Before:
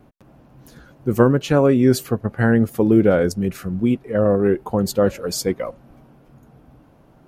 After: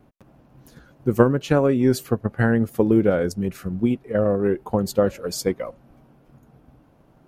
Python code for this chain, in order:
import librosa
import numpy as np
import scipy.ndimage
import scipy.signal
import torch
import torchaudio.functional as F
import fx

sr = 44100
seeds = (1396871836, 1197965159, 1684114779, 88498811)

y = fx.transient(x, sr, attack_db=5, sustain_db=0)
y = y * librosa.db_to_amplitude(-4.5)